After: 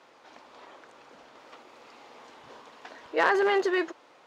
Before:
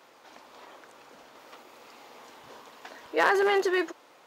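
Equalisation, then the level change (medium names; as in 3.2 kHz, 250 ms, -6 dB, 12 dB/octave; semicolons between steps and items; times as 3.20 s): distance through air 63 m; 0.0 dB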